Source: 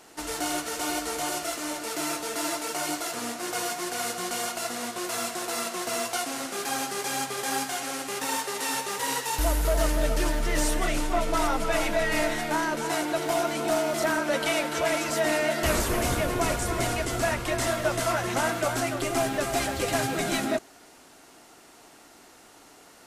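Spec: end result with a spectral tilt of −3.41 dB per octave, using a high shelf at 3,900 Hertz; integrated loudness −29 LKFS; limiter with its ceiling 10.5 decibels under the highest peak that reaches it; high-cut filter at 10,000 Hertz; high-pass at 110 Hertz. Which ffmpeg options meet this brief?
ffmpeg -i in.wav -af "highpass=110,lowpass=10000,highshelf=frequency=3900:gain=-6.5,volume=5dB,alimiter=limit=-20.5dB:level=0:latency=1" out.wav

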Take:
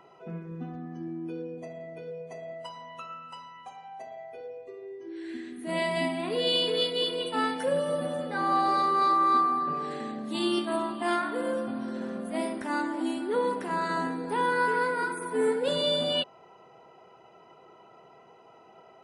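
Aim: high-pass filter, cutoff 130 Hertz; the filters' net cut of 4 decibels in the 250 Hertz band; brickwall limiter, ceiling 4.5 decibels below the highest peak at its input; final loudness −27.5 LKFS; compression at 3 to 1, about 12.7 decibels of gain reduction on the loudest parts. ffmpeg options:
ffmpeg -i in.wav -af "highpass=130,equalizer=frequency=250:width_type=o:gain=-5,acompressor=threshold=-39dB:ratio=3,volume=13.5dB,alimiter=limit=-18dB:level=0:latency=1" out.wav

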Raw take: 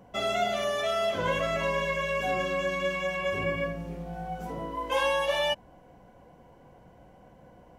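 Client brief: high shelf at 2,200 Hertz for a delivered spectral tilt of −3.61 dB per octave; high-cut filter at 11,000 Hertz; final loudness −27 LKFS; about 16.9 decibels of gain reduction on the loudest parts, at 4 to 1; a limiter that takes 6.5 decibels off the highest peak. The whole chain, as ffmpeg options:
ffmpeg -i in.wav -af "lowpass=11000,highshelf=frequency=2200:gain=-4,acompressor=threshold=-45dB:ratio=4,volume=21dB,alimiter=limit=-18dB:level=0:latency=1" out.wav

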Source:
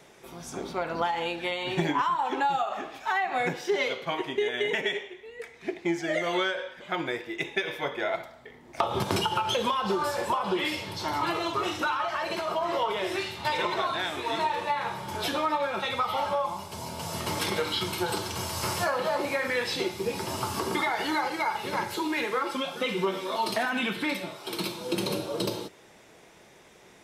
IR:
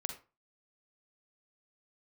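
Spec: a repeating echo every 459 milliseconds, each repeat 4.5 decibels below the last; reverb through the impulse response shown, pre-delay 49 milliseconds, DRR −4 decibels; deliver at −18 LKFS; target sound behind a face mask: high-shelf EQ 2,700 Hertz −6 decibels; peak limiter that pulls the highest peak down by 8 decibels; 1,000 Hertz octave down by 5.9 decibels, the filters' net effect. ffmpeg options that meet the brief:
-filter_complex "[0:a]equalizer=frequency=1000:width_type=o:gain=-6.5,alimiter=limit=-22.5dB:level=0:latency=1,aecho=1:1:459|918|1377|1836|2295|2754|3213|3672|4131:0.596|0.357|0.214|0.129|0.0772|0.0463|0.0278|0.0167|0.01,asplit=2[link_01][link_02];[1:a]atrim=start_sample=2205,adelay=49[link_03];[link_02][link_03]afir=irnorm=-1:irlink=0,volume=4dB[link_04];[link_01][link_04]amix=inputs=2:normalize=0,highshelf=frequency=2700:gain=-6,volume=9dB"

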